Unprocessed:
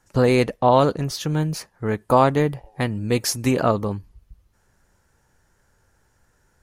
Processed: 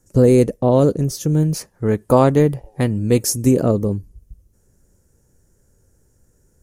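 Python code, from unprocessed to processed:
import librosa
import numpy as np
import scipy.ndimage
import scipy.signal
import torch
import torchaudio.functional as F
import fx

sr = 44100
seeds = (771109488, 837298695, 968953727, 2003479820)

y = fx.band_shelf(x, sr, hz=1800.0, db=fx.steps((0.0, -15.0), (1.42, -8.0), (3.22, -15.5)), octaves=3.0)
y = y * 10.0 ** (6.0 / 20.0)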